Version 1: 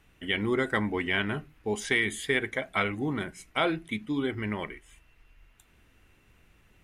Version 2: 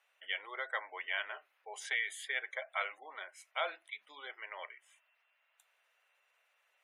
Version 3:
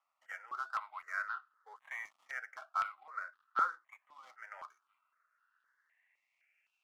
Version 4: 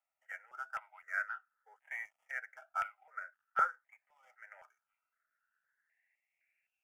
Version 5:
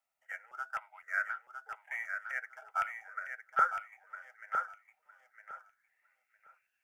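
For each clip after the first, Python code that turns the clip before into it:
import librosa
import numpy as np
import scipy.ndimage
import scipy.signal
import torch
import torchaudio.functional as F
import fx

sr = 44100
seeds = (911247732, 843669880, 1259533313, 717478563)

y1 = scipy.signal.sosfilt(scipy.signal.cheby1(4, 1.0, 570.0, 'highpass', fs=sr, output='sos'), x)
y1 = fx.spec_gate(y1, sr, threshold_db=-25, keep='strong')
y1 = y1 * librosa.db_to_amplitude(-7.5)
y2 = fx.dead_time(y1, sr, dead_ms=0.14)
y2 = fx.filter_sweep_bandpass(y2, sr, from_hz=1300.0, to_hz=2600.0, start_s=5.25, end_s=6.7, q=6.4)
y2 = fx.phaser_held(y2, sr, hz=3.9, low_hz=420.0, high_hz=2200.0)
y2 = y2 * librosa.db_to_amplitude(14.0)
y3 = fx.fixed_phaser(y2, sr, hz=1100.0, stages=6)
y3 = fx.upward_expand(y3, sr, threshold_db=-53.0, expansion=1.5)
y3 = y3 * librosa.db_to_amplitude(6.5)
y4 = fx.echo_feedback(y3, sr, ms=958, feedback_pct=19, wet_db=-6)
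y4 = y4 * librosa.db_to_amplitude(3.0)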